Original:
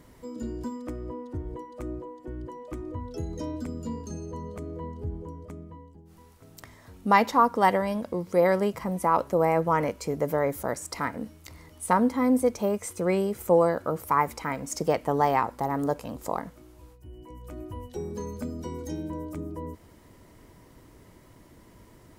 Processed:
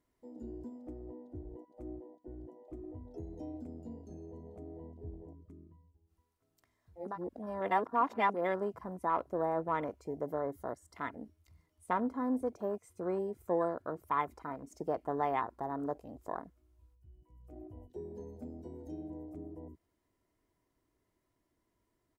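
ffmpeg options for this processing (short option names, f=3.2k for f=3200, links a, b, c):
-filter_complex "[0:a]asettb=1/sr,asplit=3[a][b][c];[a]atrim=end=10.214[d];[b]atrim=start=10.21:end=11.09,asetpts=PTS-STARTPTS,afade=t=in:d=0.004:c=qsin,afade=t=out:st=0.876:d=0.004:c=qsin,asuperstop=centerf=2500:order=4:qfactor=5.3[e];[c]atrim=start=11.086[f];[d][e]acrossfade=d=0.004:c1=hsin:c2=qsin[g];[g][f]acrossfade=d=0.004:c1=qsin:c2=hsin,asplit=3[h][i][j];[h]atrim=end=7.19,asetpts=PTS-STARTPTS[k];[i]atrim=start=6.95:end=8.46,asetpts=PTS-STARTPTS,areverse[l];[j]atrim=start=8.22,asetpts=PTS-STARTPTS[m];[k][l]acrossfade=d=0.24:c1=tri:c2=tri[n];[n][m]acrossfade=d=0.24:c1=tri:c2=tri,afwtdn=0.0224,lowshelf=f=210:g=-4,aecho=1:1:2.9:0.31,volume=-9dB"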